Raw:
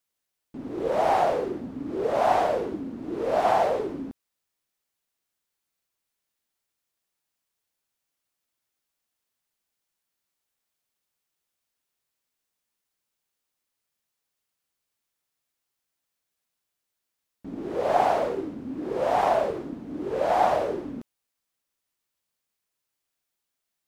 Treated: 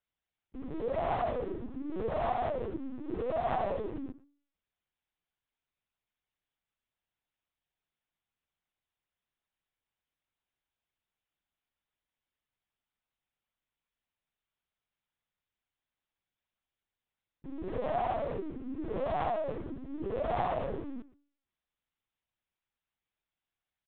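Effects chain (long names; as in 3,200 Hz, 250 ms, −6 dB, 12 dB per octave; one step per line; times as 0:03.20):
downward compressor 2 to 1, threshold −28 dBFS, peak gain reduction 7 dB
hum removal 94.55 Hz, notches 19
far-end echo of a speakerphone 110 ms, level −17 dB
linear-prediction vocoder at 8 kHz pitch kept
level −4 dB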